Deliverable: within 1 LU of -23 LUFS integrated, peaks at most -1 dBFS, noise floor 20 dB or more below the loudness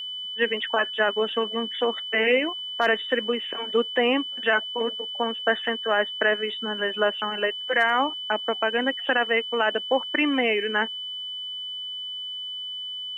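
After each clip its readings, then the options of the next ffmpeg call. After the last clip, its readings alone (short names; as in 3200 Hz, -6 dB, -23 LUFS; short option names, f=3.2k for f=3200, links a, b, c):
steady tone 3000 Hz; tone level -31 dBFS; loudness -24.5 LUFS; peak -10.5 dBFS; loudness target -23.0 LUFS
-> -af "bandreject=f=3k:w=30"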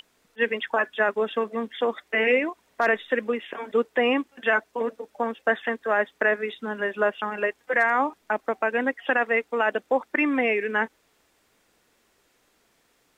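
steady tone none; loudness -25.0 LUFS; peak -11.0 dBFS; loudness target -23.0 LUFS
-> -af "volume=2dB"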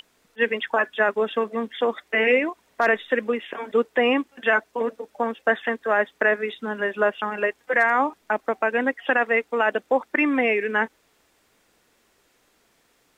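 loudness -23.0 LUFS; peak -9.0 dBFS; noise floor -65 dBFS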